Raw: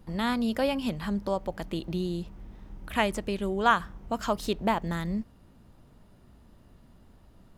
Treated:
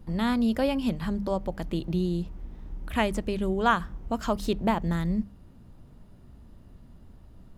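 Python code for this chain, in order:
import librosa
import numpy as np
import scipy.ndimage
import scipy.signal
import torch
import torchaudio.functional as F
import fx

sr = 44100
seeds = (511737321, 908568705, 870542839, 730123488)

y = fx.low_shelf(x, sr, hz=280.0, db=9.0)
y = fx.hum_notches(y, sr, base_hz=50, count=4)
y = y * 10.0 ** (-1.5 / 20.0)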